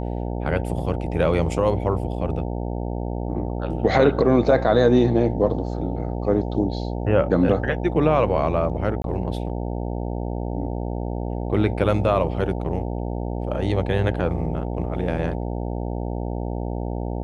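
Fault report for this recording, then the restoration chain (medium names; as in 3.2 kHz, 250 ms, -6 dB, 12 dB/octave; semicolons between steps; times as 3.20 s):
buzz 60 Hz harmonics 15 -27 dBFS
9.02–9.04 s: dropout 22 ms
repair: de-hum 60 Hz, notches 15; interpolate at 9.02 s, 22 ms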